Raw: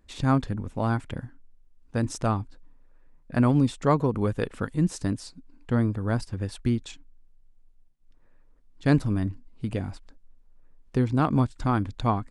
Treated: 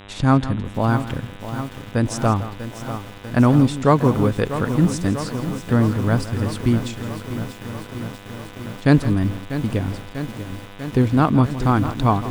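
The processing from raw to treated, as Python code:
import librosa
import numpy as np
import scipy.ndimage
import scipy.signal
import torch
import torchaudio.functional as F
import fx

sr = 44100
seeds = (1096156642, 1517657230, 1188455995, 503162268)

y = fx.dmg_buzz(x, sr, base_hz=100.0, harmonics=39, level_db=-49.0, tilt_db=-3, odd_only=False)
y = y + 10.0 ** (-14.5 / 20.0) * np.pad(y, (int(164 * sr / 1000.0), 0))[:len(y)]
y = fx.echo_crushed(y, sr, ms=644, feedback_pct=80, bits=7, wet_db=-11.0)
y = F.gain(torch.from_numpy(y), 6.5).numpy()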